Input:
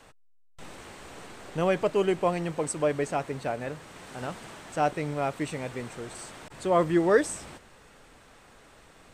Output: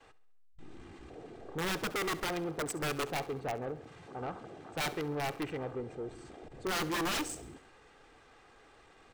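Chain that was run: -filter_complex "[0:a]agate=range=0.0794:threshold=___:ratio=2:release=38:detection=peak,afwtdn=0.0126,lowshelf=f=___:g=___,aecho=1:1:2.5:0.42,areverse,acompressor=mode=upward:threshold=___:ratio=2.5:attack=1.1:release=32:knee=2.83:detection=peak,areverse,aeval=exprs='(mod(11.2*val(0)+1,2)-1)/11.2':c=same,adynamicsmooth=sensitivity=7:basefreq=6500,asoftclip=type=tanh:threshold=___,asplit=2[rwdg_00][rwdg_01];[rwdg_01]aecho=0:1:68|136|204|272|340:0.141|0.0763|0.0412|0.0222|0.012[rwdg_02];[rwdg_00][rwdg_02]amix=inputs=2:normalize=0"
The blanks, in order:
0.00355, 140, -6, 0.00708, 0.0282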